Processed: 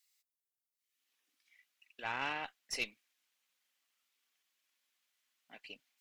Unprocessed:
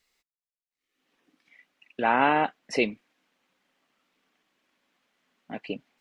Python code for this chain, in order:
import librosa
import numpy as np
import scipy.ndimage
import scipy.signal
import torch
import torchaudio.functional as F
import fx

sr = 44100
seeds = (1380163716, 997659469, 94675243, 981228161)

y = librosa.effects.preemphasis(x, coef=0.97, zi=[0.0])
y = fx.cheby_harmonics(y, sr, harmonics=(4,), levels_db=(-19,), full_scale_db=-23.5)